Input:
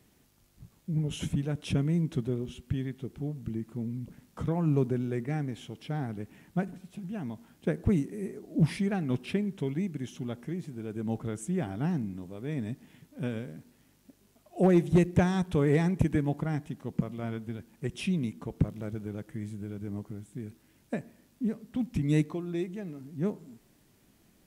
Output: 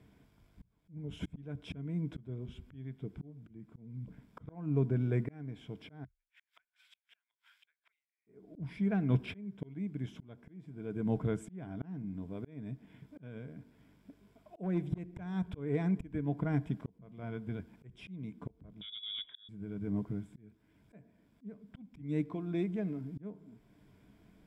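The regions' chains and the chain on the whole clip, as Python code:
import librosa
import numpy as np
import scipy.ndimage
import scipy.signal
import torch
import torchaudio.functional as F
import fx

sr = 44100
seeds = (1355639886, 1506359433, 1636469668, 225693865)

y = fx.chain(x, sr, fx.highpass(hz=1400.0, slope=24),
    fx.peak_eq(hz=3300.0, db=7.0, octaves=1.4),
    fx.gate_flip(shuts_db=-45.0, range_db=-39), at=(6.04, 8.27))
y = fx.chain(y, sr, fx.peak_eq(hz=180.0, db=12.0, octaves=0.34),
    fx.level_steps(step_db=9),
    fx.freq_invert(carrier_hz=3600), at=(18.81, 19.49))
y = fx.ripple_eq(y, sr, per_octave=1.7, db=7)
y = fx.auto_swell(y, sr, attack_ms=668.0)
y = fx.bass_treble(y, sr, bass_db=3, treble_db=-15)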